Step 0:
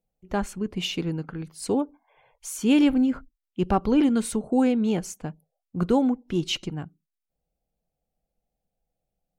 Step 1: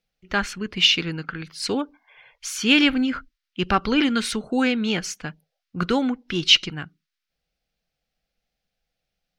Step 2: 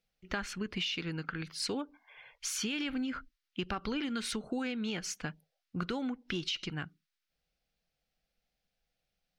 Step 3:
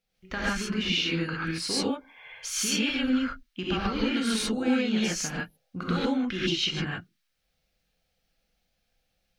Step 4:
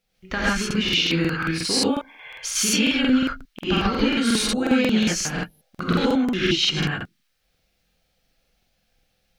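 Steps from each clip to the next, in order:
band shelf 2700 Hz +15 dB 2.5 oct; gain -1 dB
limiter -13 dBFS, peak gain reduction 10.5 dB; compressor 6:1, threshold -29 dBFS, peak gain reduction 11 dB; gain -3.5 dB
non-linear reverb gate 0.17 s rising, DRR -7.5 dB
crackling interface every 0.18 s, samples 2048, repeat, from 0.66; gain +6.5 dB

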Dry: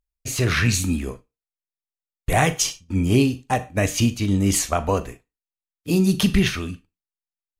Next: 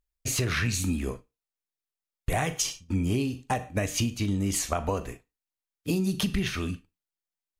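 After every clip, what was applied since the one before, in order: compressor, threshold -24 dBFS, peak gain reduction 11.5 dB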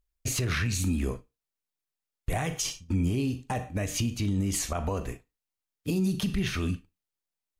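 low shelf 230 Hz +4.5 dB; limiter -19.5 dBFS, peak gain reduction 9.5 dB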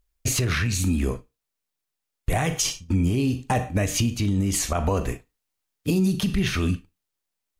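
vocal rider 0.5 s; gain +6 dB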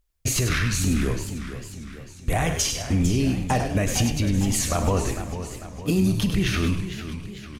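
frequency-shifting echo 0.1 s, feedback 33%, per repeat -82 Hz, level -7.5 dB; warbling echo 0.452 s, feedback 53%, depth 156 cents, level -11 dB

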